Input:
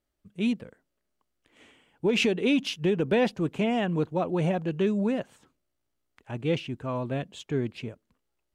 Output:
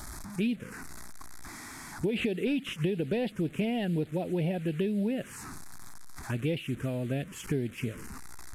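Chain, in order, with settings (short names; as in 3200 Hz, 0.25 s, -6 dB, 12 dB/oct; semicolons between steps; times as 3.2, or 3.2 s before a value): delta modulation 64 kbps, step -41.5 dBFS; compressor 5:1, threshold -35 dBFS, peak gain reduction 13.5 dB; envelope phaser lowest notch 410 Hz, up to 1200 Hz, full sweep at -32.5 dBFS; gain +8 dB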